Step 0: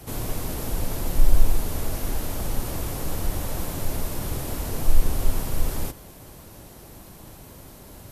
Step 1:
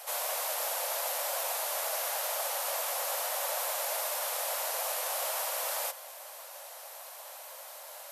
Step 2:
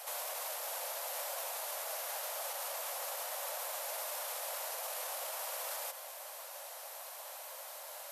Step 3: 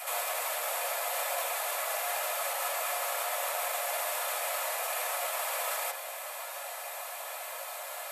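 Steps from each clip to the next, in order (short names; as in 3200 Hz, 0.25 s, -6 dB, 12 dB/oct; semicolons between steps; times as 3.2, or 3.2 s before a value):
steep high-pass 530 Hz 72 dB/oct; gain +3 dB
limiter -30 dBFS, peak gain reduction 9 dB; gain -1 dB
reverb, pre-delay 3 ms, DRR -2.5 dB; gain +5 dB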